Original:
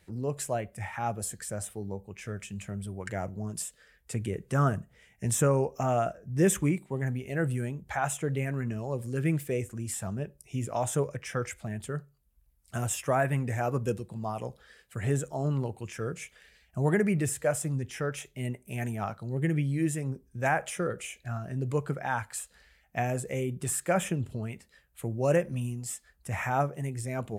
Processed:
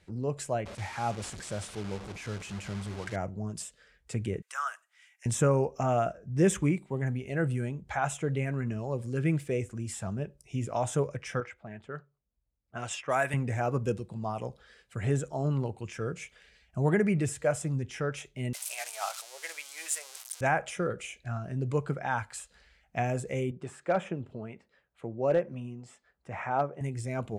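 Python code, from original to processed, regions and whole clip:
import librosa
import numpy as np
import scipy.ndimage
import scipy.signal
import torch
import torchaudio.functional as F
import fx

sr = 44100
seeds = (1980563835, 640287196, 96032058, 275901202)

y = fx.chain(x, sr, fx.delta_mod(bps=64000, step_db=-36.5),
    fx.gate_hold(open_db=-33.0, close_db=-39.0, hold_ms=71.0, range_db=-21, attack_ms=1.4, release_ms=100.0), at=(0.65, 3.16))
y = fx.chain(y, sr, fx.highpass(hz=1100.0, slope=24),
    fx.high_shelf(hz=8400.0, db=10.0), at=(4.42, 5.26))
y = fx.chain(y, sr, fx.env_lowpass(base_hz=490.0, full_db=-22.5),
    fx.tilt_eq(slope=3.5), at=(11.4, 13.34))
y = fx.chain(y, sr, fx.crossing_spikes(level_db=-28.0),
    fx.steep_highpass(hz=600.0, slope=36),
    fx.high_shelf(hz=4500.0, db=10.5), at=(18.53, 20.41))
y = fx.chain(y, sr, fx.bandpass_q(hz=640.0, q=0.5),
    fx.overload_stage(gain_db=18.5), at=(23.51, 26.81))
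y = scipy.signal.sosfilt(scipy.signal.butter(2, 7100.0, 'lowpass', fs=sr, output='sos'), y)
y = fx.notch(y, sr, hz=1800.0, q=20.0)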